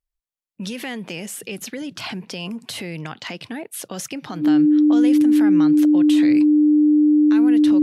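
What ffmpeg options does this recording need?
-af "bandreject=f=300:w=30"

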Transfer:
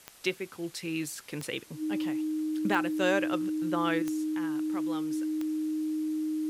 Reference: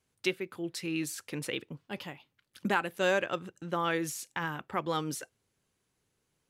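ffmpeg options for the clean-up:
-af "adeclick=t=4,bandreject=f=310:w=30,afwtdn=0.002,asetnsamples=n=441:p=0,asendcmd='4.02 volume volume 9dB',volume=1"

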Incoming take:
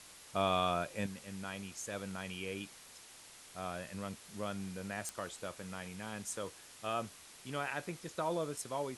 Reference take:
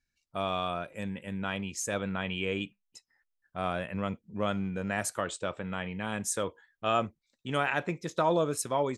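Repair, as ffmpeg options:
-af "adeclick=t=4,afwtdn=0.0022,asetnsamples=n=441:p=0,asendcmd='1.06 volume volume 9.5dB',volume=1"

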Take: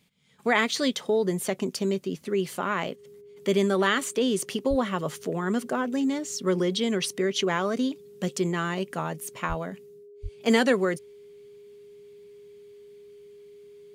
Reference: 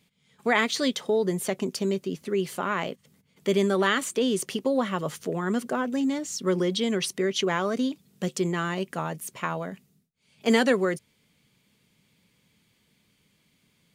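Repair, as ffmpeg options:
-filter_complex "[0:a]bandreject=f=410:w=30,asplit=3[s0][s1][s2];[s0]afade=t=out:st=4.69:d=0.02[s3];[s1]highpass=f=140:w=0.5412,highpass=f=140:w=1.3066,afade=t=in:st=4.69:d=0.02,afade=t=out:st=4.81:d=0.02[s4];[s2]afade=t=in:st=4.81:d=0.02[s5];[s3][s4][s5]amix=inputs=3:normalize=0,asplit=3[s6][s7][s8];[s6]afade=t=out:st=9.48:d=0.02[s9];[s7]highpass=f=140:w=0.5412,highpass=f=140:w=1.3066,afade=t=in:st=9.48:d=0.02,afade=t=out:st=9.6:d=0.02[s10];[s8]afade=t=in:st=9.6:d=0.02[s11];[s9][s10][s11]amix=inputs=3:normalize=0,asplit=3[s12][s13][s14];[s12]afade=t=out:st=10.22:d=0.02[s15];[s13]highpass=f=140:w=0.5412,highpass=f=140:w=1.3066,afade=t=in:st=10.22:d=0.02,afade=t=out:st=10.34:d=0.02[s16];[s14]afade=t=in:st=10.34:d=0.02[s17];[s15][s16][s17]amix=inputs=3:normalize=0"

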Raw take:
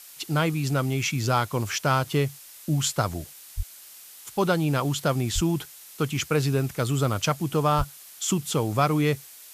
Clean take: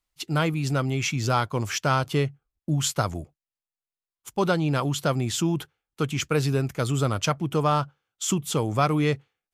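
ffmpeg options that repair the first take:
-filter_complex "[0:a]asplit=3[s0][s1][s2];[s0]afade=t=out:st=3.56:d=0.02[s3];[s1]highpass=f=140:w=0.5412,highpass=f=140:w=1.3066,afade=t=in:st=3.56:d=0.02,afade=t=out:st=3.68:d=0.02[s4];[s2]afade=t=in:st=3.68:d=0.02[s5];[s3][s4][s5]amix=inputs=3:normalize=0,asplit=3[s6][s7][s8];[s6]afade=t=out:st=5.34:d=0.02[s9];[s7]highpass=f=140:w=0.5412,highpass=f=140:w=1.3066,afade=t=in:st=5.34:d=0.02,afade=t=out:st=5.46:d=0.02[s10];[s8]afade=t=in:st=5.46:d=0.02[s11];[s9][s10][s11]amix=inputs=3:normalize=0,asplit=3[s12][s13][s14];[s12]afade=t=out:st=7.77:d=0.02[s15];[s13]highpass=f=140:w=0.5412,highpass=f=140:w=1.3066,afade=t=in:st=7.77:d=0.02,afade=t=out:st=7.89:d=0.02[s16];[s14]afade=t=in:st=7.89:d=0.02[s17];[s15][s16][s17]amix=inputs=3:normalize=0,afftdn=nr=30:nf=-47"

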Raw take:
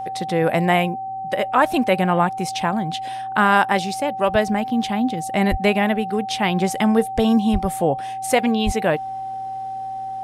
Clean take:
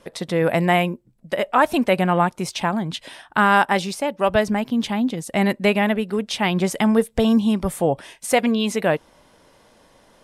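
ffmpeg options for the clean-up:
-filter_complex "[0:a]bandreject=f=119.3:t=h:w=4,bandreject=f=238.6:t=h:w=4,bandreject=f=357.9:t=h:w=4,bandreject=f=477.2:t=h:w=4,bandreject=f=596.5:t=h:w=4,bandreject=f=770:w=30,asplit=3[s0][s1][s2];[s0]afade=t=out:st=5.5:d=0.02[s3];[s1]highpass=f=140:w=0.5412,highpass=f=140:w=1.3066,afade=t=in:st=5.5:d=0.02,afade=t=out:st=5.62:d=0.02[s4];[s2]afade=t=in:st=5.62:d=0.02[s5];[s3][s4][s5]amix=inputs=3:normalize=0,asplit=3[s6][s7][s8];[s6]afade=t=out:st=7.52:d=0.02[s9];[s7]highpass=f=140:w=0.5412,highpass=f=140:w=1.3066,afade=t=in:st=7.52:d=0.02,afade=t=out:st=7.64:d=0.02[s10];[s8]afade=t=in:st=7.64:d=0.02[s11];[s9][s10][s11]amix=inputs=3:normalize=0,asplit=3[s12][s13][s14];[s12]afade=t=out:st=8.65:d=0.02[s15];[s13]highpass=f=140:w=0.5412,highpass=f=140:w=1.3066,afade=t=in:st=8.65:d=0.02,afade=t=out:st=8.77:d=0.02[s16];[s14]afade=t=in:st=8.77:d=0.02[s17];[s15][s16][s17]amix=inputs=3:normalize=0"

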